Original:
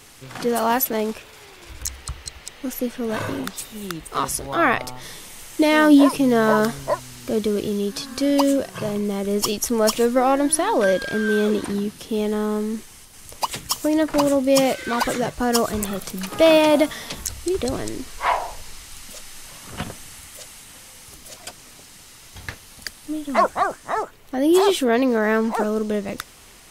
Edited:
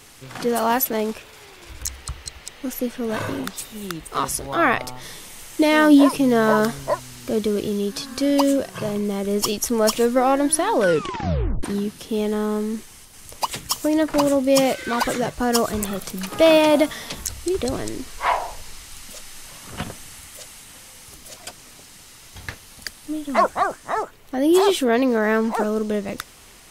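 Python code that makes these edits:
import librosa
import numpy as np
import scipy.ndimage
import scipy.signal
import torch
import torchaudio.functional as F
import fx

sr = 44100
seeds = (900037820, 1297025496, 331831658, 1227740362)

y = fx.edit(x, sr, fx.tape_stop(start_s=10.82, length_s=0.81), tone=tone)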